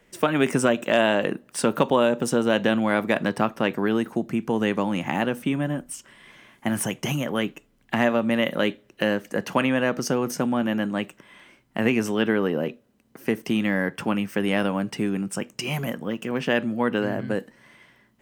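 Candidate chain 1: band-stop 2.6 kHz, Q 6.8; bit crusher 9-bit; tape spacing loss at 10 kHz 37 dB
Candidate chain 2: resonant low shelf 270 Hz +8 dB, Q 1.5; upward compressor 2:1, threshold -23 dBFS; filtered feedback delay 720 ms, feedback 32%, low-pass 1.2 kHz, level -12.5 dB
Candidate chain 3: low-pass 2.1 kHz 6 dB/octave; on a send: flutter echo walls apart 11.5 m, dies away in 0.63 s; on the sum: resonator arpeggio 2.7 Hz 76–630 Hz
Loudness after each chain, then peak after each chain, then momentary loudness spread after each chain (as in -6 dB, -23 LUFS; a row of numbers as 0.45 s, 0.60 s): -26.5 LUFS, -20.0 LUFS, -36.0 LUFS; -9.0 dBFS, -3.5 dBFS, -14.0 dBFS; 8 LU, 10 LU, 15 LU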